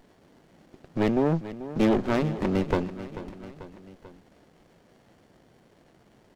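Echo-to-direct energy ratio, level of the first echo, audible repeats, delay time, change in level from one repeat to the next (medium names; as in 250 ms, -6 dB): -12.5 dB, -14.0 dB, 3, 440 ms, -4.5 dB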